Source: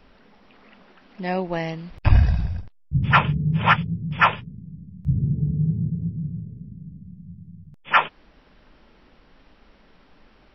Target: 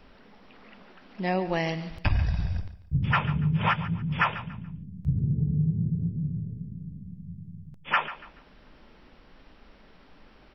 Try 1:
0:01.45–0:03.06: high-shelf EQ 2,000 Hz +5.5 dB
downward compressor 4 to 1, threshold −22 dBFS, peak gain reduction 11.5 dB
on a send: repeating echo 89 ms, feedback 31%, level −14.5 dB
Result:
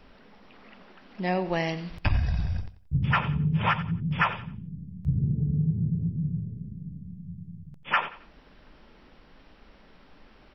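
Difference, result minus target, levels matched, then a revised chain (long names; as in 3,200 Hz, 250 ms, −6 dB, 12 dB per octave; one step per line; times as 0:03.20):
echo 54 ms early
0:01.45–0:03.06: high-shelf EQ 2,000 Hz +5.5 dB
downward compressor 4 to 1, threshold −22 dBFS, peak gain reduction 11.5 dB
on a send: repeating echo 143 ms, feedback 31%, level −14.5 dB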